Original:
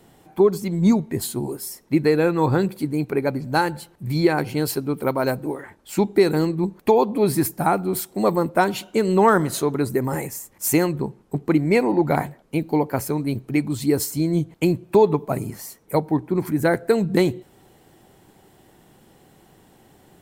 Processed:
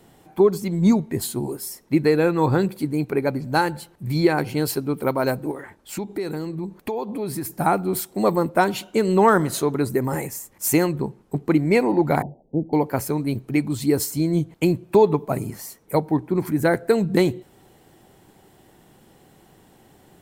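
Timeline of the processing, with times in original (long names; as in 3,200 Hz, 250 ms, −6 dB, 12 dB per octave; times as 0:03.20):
0:05.51–0:07.52: downward compressor 3 to 1, threshold −27 dBFS
0:12.22–0:12.73: Butterworth low-pass 840 Hz 72 dB per octave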